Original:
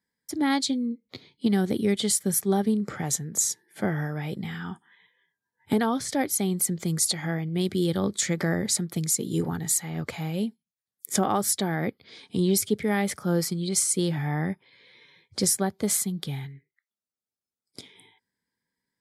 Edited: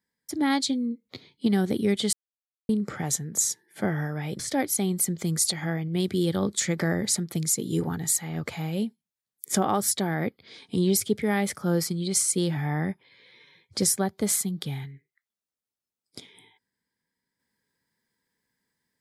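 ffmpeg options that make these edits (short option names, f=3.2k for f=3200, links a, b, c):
-filter_complex "[0:a]asplit=4[a][b][c][d];[a]atrim=end=2.13,asetpts=PTS-STARTPTS,afade=t=out:st=2.126:d=0.004:c=hsin[e];[b]atrim=start=2.13:end=2.69,asetpts=PTS-STARTPTS,volume=0[f];[c]atrim=start=2.69:end=4.392,asetpts=PTS-STARTPTS,afade=t=in:d=0.004:c=hsin[g];[d]atrim=start=5.998[h];[e][f][g]concat=n=3:v=0:a=1[i];[i][h]acrossfade=d=0.004:c1=hsin:c2=hsin"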